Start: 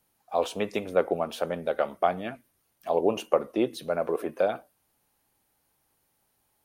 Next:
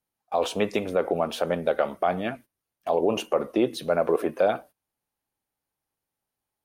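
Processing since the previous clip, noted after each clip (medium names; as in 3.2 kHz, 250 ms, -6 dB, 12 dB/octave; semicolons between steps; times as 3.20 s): treble shelf 8.4 kHz -4 dB; gate -49 dBFS, range -18 dB; peak limiter -17.5 dBFS, peak gain reduction 8.5 dB; trim +5.5 dB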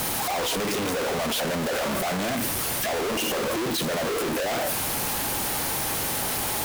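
one-bit comparator; bass shelf 85 Hz -5 dB; trim +1.5 dB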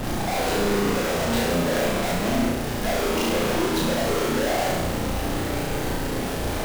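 median filter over 41 samples; added noise brown -38 dBFS; on a send: flutter echo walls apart 5.9 m, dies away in 0.9 s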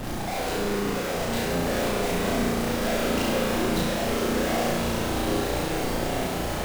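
swelling reverb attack 1680 ms, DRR 1 dB; trim -4.5 dB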